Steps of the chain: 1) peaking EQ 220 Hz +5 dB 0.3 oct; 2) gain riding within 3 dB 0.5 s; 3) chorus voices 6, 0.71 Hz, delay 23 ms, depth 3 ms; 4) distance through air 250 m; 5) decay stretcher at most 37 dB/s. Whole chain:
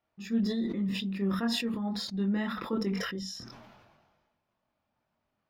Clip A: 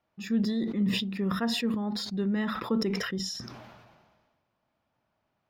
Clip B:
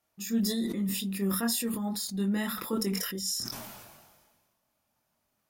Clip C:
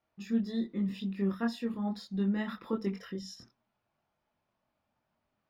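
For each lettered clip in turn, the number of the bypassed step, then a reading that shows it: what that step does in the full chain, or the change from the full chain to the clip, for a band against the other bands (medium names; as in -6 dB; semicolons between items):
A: 3, loudness change +2.0 LU; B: 4, 8 kHz band +14.0 dB; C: 5, crest factor change +2.0 dB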